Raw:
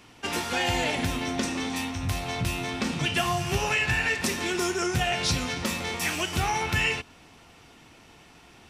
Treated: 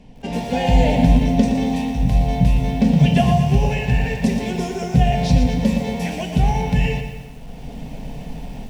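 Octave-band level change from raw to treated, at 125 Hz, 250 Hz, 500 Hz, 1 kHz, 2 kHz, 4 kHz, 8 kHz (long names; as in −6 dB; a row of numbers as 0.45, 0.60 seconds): +14.5, +13.5, +8.0, +5.5, −3.5, −2.5, −5.5 decibels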